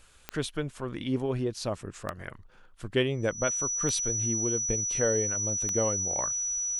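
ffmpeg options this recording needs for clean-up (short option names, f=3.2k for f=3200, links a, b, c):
-af "adeclick=t=4,bandreject=f=5.9k:w=30"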